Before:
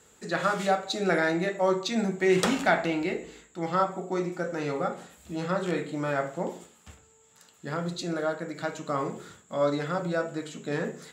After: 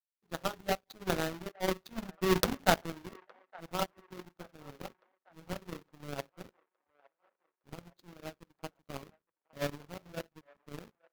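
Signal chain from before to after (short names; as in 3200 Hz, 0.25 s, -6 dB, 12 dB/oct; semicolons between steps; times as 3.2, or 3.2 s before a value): half-waves squared off; bell 8800 Hz -8 dB 0.68 oct; power-law curve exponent 3; on a send: band-limited delay 0.863 s, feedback 45%, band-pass 1100 Hz, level -23 dB; on the sum: gain +6 dB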